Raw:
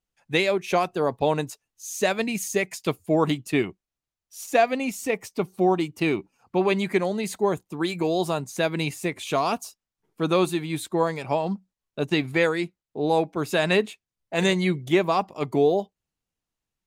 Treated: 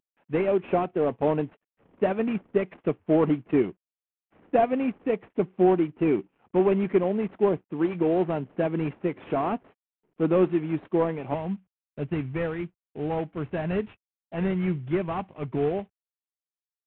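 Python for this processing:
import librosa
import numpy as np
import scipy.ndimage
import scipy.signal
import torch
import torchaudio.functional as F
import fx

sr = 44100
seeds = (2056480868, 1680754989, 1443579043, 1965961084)

y = fx.cvsd(x, sr, bps=16000)
y = fx.peak_eq(y, sr, hz=fx.steps((0.0, 310.0), (11.34, 86.0)), db=11.0, octaves=2.9)
y = y * 10.0 ** (-8.0 / 20.0)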